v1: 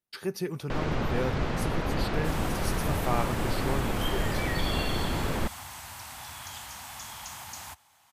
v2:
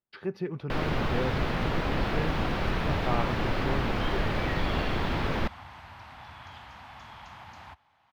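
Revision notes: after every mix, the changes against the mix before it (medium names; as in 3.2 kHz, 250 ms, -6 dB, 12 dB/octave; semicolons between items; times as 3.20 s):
first sound: remove tape spacing loss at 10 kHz 33 dB; master: add distance through air 340 m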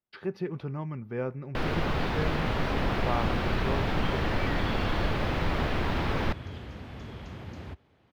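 first sound: entry +0.85 s; second sound: add resonant low shelf 610 Hz +12 dB, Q 3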